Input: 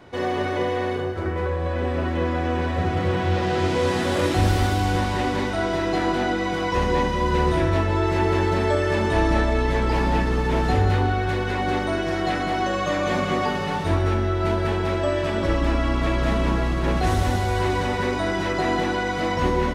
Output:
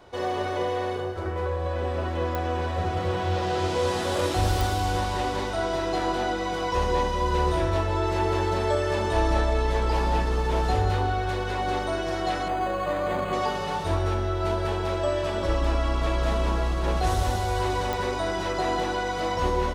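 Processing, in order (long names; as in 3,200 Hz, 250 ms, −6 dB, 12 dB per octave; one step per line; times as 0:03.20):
octave-band graphic EQ 125/250/2,000 Hz −7/−9/−7 dB
digital clicks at 0:02.35/0:04.61/0:17.93, −15 dBFS
0:12.48–0:13.33: linearly interpolated sample-rate reduction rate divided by 8×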